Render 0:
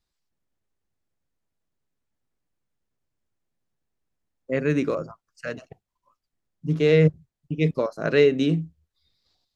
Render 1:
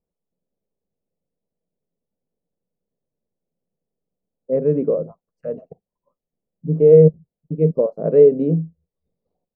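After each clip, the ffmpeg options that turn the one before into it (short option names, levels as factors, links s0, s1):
-af "firequalizer=gain_entry='entry(120,0);entry(170,12);entry(320,4);entry(470,15);entry(810,2);entry(1500,-17);entry(2300,-18);entry(3600,-29)':delay=0.05:min_phase=1,volume=0.562"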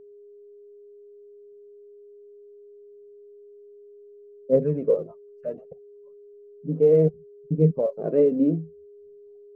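-af "aphaser=in_gain=1:out_gain=1:delay=4.2:decay=0.57:speed=0.66:type=triangular,aeval=exprs='val(0)+0.01*sin(2*PI*410*n/s)':c=same,volume=0.531"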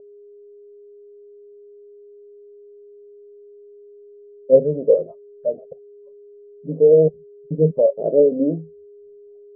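-af "lowpass=f=600:t=q:w=3.7,volume=0.841"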